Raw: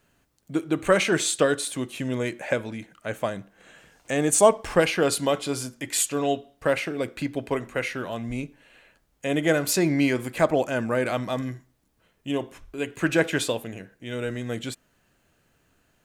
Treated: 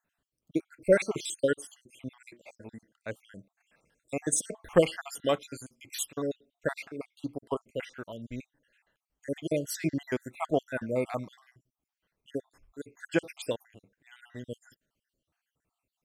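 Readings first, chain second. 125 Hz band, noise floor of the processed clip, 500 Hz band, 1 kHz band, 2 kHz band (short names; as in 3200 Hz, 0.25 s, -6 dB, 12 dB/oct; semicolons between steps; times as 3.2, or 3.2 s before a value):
-8.5 dB, under -85 dBFS, -6.5 dB, -10.5 dB, -10.5 dB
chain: random spectral dropouts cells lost 59%; upward expander 1.5:1, over -43 dBFS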